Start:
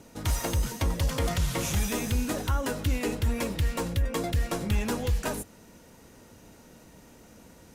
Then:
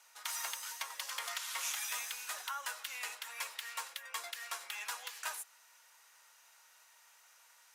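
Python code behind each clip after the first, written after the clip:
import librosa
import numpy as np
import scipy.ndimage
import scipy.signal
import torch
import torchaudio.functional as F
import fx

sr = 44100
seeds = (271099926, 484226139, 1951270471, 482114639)

y = scipy.signal.sosfilt(scipy.signal.butter(4, 1000.0, 'highpass', fs=sr, output='sos'), x)
y = y * librosa.db_to_amplitude(-4.0)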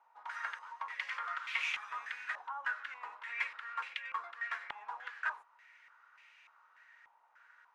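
y = fx.peak_eq(x, sr, hz=590.0, db=-8.0, octaves=2.0)
y = fx.filter_held_lowpass(y, sr, hz=3.4, low_hz=890.0, high_hz=2400.0)
y = y * librosa.db_to_amplitude(1.0)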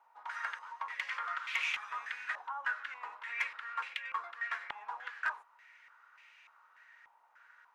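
y = np.clip(x, -10.0 ** (-25.0 / 20.0), 10.0 ** (-25.0 / 20.0))
y = y * librosa.db_to_amplitude(1.5)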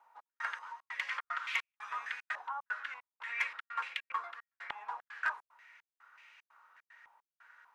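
y = fx.step_gate(x, sr, bpm=150, pattern='xx..xxxx.xxx.x', floor_db=-60.0, edge_ms=4.5)
y = y * librosa.db_to_amplitude(1.0)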